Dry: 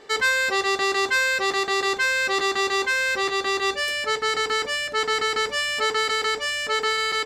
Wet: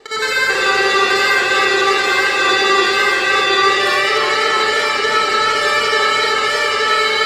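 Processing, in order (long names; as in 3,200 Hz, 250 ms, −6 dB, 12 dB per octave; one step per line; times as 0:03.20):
reversed piece by piece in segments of 55 ms
comb and all-pass reverb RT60 3.8 s, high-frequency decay 0.6×, pre-delay 5 ms, DRR −8 dB
feedback echo with a swinging delay time 300 ms, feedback 63%, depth 94 cents, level −8 dB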